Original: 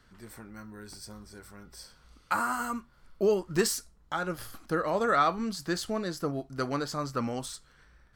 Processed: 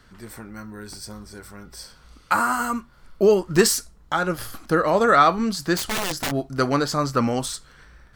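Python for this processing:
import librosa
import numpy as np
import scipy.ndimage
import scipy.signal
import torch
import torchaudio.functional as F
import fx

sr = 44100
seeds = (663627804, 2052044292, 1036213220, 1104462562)

p1 = fx.rider(x, sr, range_db=10, speed_s=2.0)
p2 = x + (p1 * 10.0 ** (3.0 / 20.0))
p3 = fx.overflow_wrap(p2, sr, gain_db=20.5, at=(5.75, 6.3), fade=0.02)
y = p3 * 10.0 ** (1.0 / 20.0)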